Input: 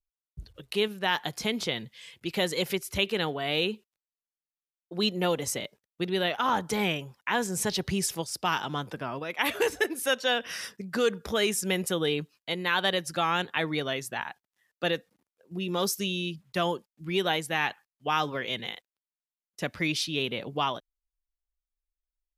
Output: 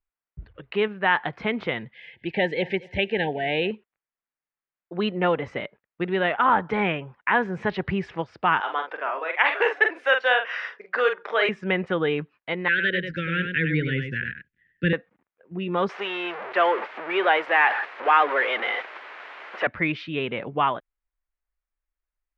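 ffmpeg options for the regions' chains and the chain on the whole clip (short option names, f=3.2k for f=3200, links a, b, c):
-filter_complex "[0:a]asettb=1/sr,asplit=3[a][b][c];[a]atrim=end=1.944[d];[b]atrim=start=1.94:end=3.71,asetpts=PTS-STARTPTS,afade=t=in:d=0.004:c=qsin,afade=t=out:st=1.766:d=0.004:c=qsin,asuperstop=centerf=1200:order=20:qfactor=1.9,highshelf=f=7.8k:g=8,aecho=1:1:230|460:0.0841|0.0202,atrim=end_sample=78057[e];[c]atrim=start=3.706[f];[d][e]acrossfade=d=0.004:c1=hsin:c2=qsin[g];[g][f]acrossfade=d=0.004:c1=qsin:c2=hsin,asettb=1/sr,asplit=3[h][i][j];[h]atrim=end=8.604[k];[i]atrim=start=8.6:end=11.49,asetpts=PTS-STARTPTS,afade=t=in:d=0.004:c=qsin,afade=t=out:st=2.886:d=0.004:c=qsin,highpass=f=440:w=0.5412,highpass=f=440:w=1.3066,highshelf=f=5.1k:g=10.5,asplit=2[l][m];[m]adelay=44,volume=-6dB[n];[l][n]amix=inputs=2:normalize=0,atrim=end_sample=127449[o];[j]atrim=start=11.486[p];[k][o]acrossfade=d=0.004:c1=hsin:c2=qsin[q];[q][p]acrossfade=d=0.004:c1=qsin:c2=hsin,asettb=1/sr,asplit=3[r][s][t];[r]atrim=end=12.684[u];[s]atrim=start=12.68:end=14.93,asetpts=PTS-STARTPTS,afade=t=in:d=0.004:c=qsin,afade=t=out:st=2.246:d=0.004:c=qsin,asubboost=boost=11.5:cutoff=190,asuperstop=centerf=880:order=12:qfactor=0.91,aecho=1:1:98:0.473,atrim=end_sample=99225[v];[t]atrim=start=14.926[w];[u][v]acrossfade=d=0.004:c1=hsin:c2=qsin[x];[x][w]acrossfade=d=0.004:c1=qsin:c2=hsin,asettb=1/sr,asplit=3[y][z][aa];[y]atrim=end=15.894[ab];[z]atrim=start=15.89:end=19.67,asetpts=PTS-STARTPTS,afade=t=in:d=0.004:c=qsin,afade=t=out:st=3.776:d=0.004:c=qsin,aeval=exprs='val(0)+0.5*0.0473*sgn(val(0))':c=same,highpass=f=390:w=0.5412,highpass=f=390:w=1.3066[ac];[aa]atrim=start=19.666[ad];[ab][ac]acrossfade=d=0.004:c1=hsin:c2=qsin[ae];[ae][ad]acrossfade=d=0.004:c1=qsin:c2=hsin,lowpass=f=2.1k:w=0.5412,lowpass=f=2.1k:w=1.3066,tiltshelf=f=850:g=-4,volume=6.5dB"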